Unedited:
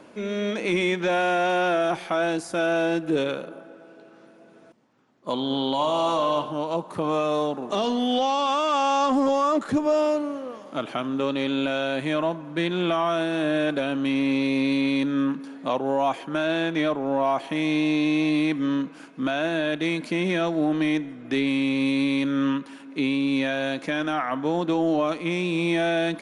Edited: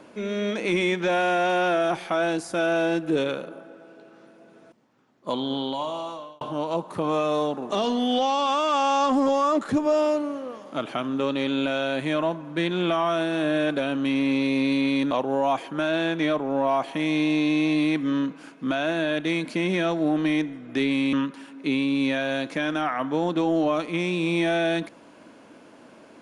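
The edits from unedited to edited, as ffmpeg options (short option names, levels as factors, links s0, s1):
-filter_complex "[0:a]asplit=4[s0][s1][s2][s3];[s0]atrim=end=6.41,asetpts=PTS-STARTPTS,afade=t=out:st=5.29:d=1.12[s4];[s1]atrim=start=6.41:end=15.112,asetpts=PTS-STARTPTS,afade=t=in:d=0.004:c=hsin[s5];[s2]atrim=start=15.668:end=21.692[s6];[s3]atrim=start=22.448[s7];[s4][s5]concat=n=2:v=0:a=1[s8];[s8][s6]acrossfade=d=0.004:c1=hsin:c2=hsin[s9];[s9][s7]acrossfade=d=0.004:c1=hsin:c2=hsin"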